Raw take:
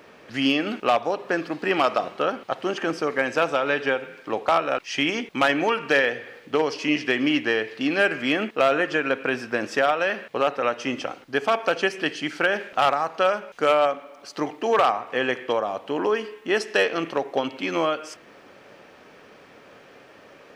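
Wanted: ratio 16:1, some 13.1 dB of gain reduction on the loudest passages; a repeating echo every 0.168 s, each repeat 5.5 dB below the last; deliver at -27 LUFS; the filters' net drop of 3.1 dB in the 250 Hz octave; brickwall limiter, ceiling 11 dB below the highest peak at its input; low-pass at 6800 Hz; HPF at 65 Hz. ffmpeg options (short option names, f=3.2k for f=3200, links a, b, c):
-af "highpass=65,lowpass=6.8k,equalizer=f=250:t=o:g=-4,acompressor=threshold=-28dB:ratio=16,alimiter=level_in=0.5dB:limit=-24dB:level=0:latency=1,volume=-0.5dB,aecho=1:1:168|336|504|672|840|1008|1176:0.531|0.281|0.149|0.079|0.0419|0.0222|0.0118,volume=8dB"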